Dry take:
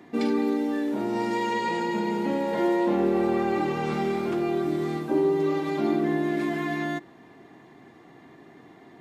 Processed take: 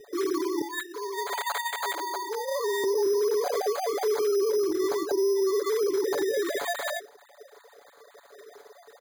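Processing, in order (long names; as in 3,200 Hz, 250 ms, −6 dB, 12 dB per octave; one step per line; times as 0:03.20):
three sine waves on the formant tracks
0:00.61–0:02.84: high-pass filter 710 Hz 12 dB per octave
comb filter 7 ms, depth 79%
downward compressor, threshold −23 dBFS, peak gain reduction 11 dB
brickwall limiter −23 dBFS, peak gain reduction 6 dB
high-frequency loss of the air 440 metres
bad sample-rate conversion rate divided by 8×, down filtered, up hold
level +4.5 dB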